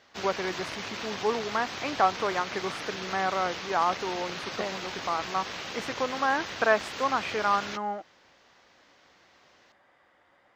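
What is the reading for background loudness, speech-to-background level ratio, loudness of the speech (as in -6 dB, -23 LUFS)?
-36.0 LUFS, 6.0 dB, -30.0 LUFS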